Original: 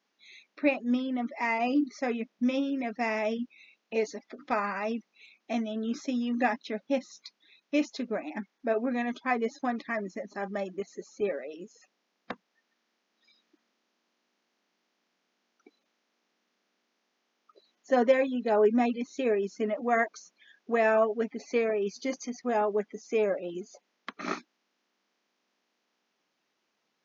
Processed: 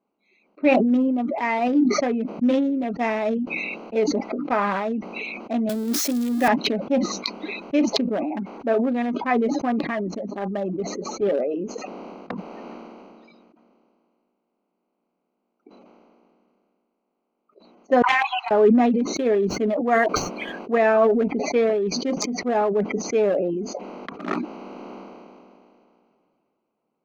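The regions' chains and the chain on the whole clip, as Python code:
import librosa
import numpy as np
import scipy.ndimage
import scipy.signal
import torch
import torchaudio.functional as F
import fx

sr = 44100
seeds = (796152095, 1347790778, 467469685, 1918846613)

y = fx.chain(x, sr, fx.crossing_spikes(level_db=-22.0),
    fx.highpass(hz=170.0, slope=24), at=(5.69, 6.48))
y = fx.chain(y, sr, fx.brickwall_highpass(low_hz=730.0),
    fx.high_shelf(hz=5000.0, db=-5.5), at=(18.02, 18.51))
y = fx.chain(y, sr, fx.median_filter(points=5),
    fx.high_shelf(hz=3800.0, db=4.5), at=(19.16, 20.76))
y = fx.wiener(y, sr, points=25)
y = fx.high_shelf(y, sr, hz=3800.0, db=-9.0)
y = fx.sustainer(y, sr, db_per_s=23.0)
y = y * librosa.db_to_amplitude(6.5)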